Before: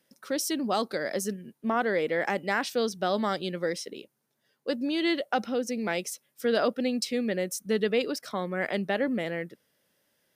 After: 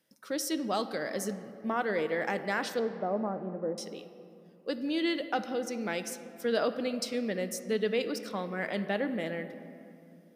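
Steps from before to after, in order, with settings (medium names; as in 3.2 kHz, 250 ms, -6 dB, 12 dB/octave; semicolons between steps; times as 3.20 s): 2.79–3.78 s: low-pass 1 kHz 24 dB/octave; on a send: reverberation RT60 2.8 s, pre-delay 6 ms, DRR 9 dB; on the sum: trim -4 dB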